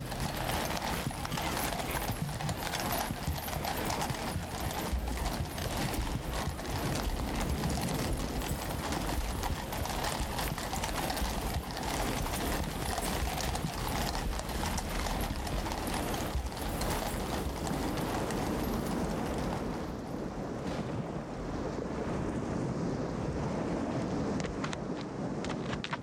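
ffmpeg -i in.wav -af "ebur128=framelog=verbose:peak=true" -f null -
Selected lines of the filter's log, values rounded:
Integrated loudness:
  I:         -34.7 LUFS
  Threshold: -44.7 LUFS
Loudness range:
  LRA:         1.7 LU
  Threshold: -54.7 LUFS
  LRA low:   -35.7 LUFS
  LRA high:  -34.0 LUFS
True peak:
  Peak:      -14.6 dBFS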